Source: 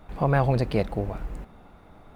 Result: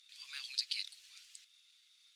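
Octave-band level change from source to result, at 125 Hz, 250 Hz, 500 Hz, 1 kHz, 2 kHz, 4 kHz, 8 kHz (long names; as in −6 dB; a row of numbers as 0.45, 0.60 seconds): below −40 dB, below −40 dB, below −40 dB, below −35 dB, −14.0 dB, +7.0 dB, can't be measured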